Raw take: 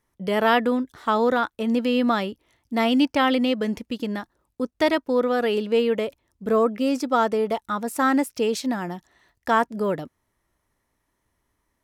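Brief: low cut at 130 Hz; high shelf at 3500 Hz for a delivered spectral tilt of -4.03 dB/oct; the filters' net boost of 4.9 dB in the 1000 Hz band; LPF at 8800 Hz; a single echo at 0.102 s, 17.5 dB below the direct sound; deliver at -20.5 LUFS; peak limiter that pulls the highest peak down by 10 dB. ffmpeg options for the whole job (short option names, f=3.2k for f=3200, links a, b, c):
-af "highpass=130,lowpass=8.8k,equalizer=f=1k:t=o:g=7,highshelf=f=3.5k:g=-8,alimiter=limit=-14dB:level=0:latency=1,aecho=1:1:102:0.133,volume=4.5dB"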